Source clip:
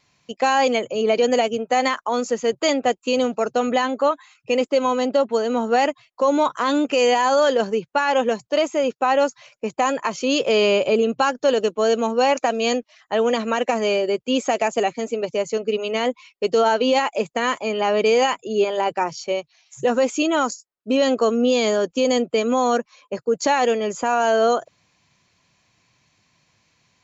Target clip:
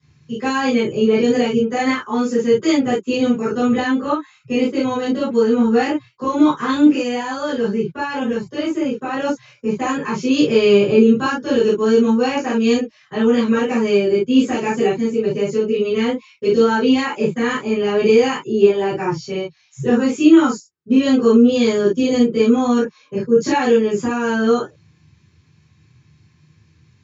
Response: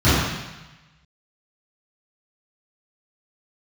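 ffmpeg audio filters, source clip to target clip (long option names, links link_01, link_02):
-filter_complex "[0:a]asettb=1/sr,asplit=3[link_01][link_02][link_03];[link_01]atrim=end=6.874[link_04];[link_02]atrim=start=6.87:end=9.14,asetpts=PTS-STARTPTS,afade=type=in:duration=0.004:curve=qsin,afade=type=out:start_time=2.266:duration=0.004:curve=qsin,acompressor=threshold=-22dB:ratio=2[link_05];[link_03]atrim=start=9.136[link_06];[link_04][link_05]acrossfade=duration=0.004:curve1=hsin:curve2=qsin[link_07];[link_07][link_06]acrossfade=duration=0.004:curve1=qsin:curve2=hsin,equalizer=frequency=660:width_type=o:width=0.71:gain=-9.5[link_08];[1:a]atrim=start_sample=2205,afade=type=out:start_time=0.14:duration=0.01,atrim=end_sample=6615,asetrate=52920,aresample=44100[link_09];[link_08][link_09]afir=irnorm=-1:irlink=0,volume=-18dB"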